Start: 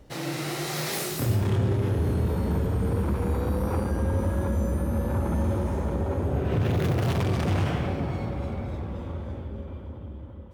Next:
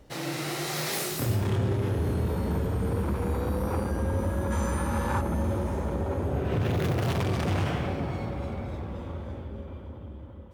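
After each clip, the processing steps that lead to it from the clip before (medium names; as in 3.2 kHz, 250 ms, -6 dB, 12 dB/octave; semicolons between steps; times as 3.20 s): time-frequency box 4.51–5.21 s, 790–9400 Hz +9 dB; bass shelf 340 Hz -3 dB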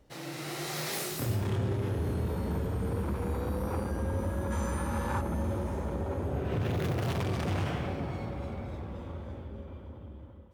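level rider gain up to 4 dB; trim -8 dB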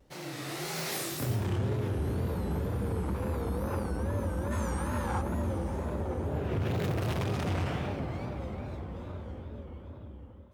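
wow and flutter 130 cents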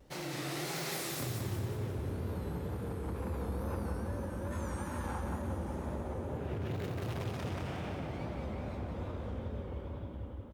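compression 6:1, threshold -39 dBFS, peak gain reduction 12 dB; feedback delay 180 ms, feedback 52%, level -5 dB; trim +2.5 dB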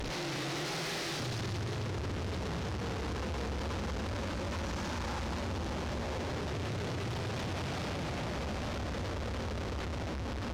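one-bit delta coder 32 kbps, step -35.5 dBFS; valve stage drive 41 dB, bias 0.35; trim +7.5 dB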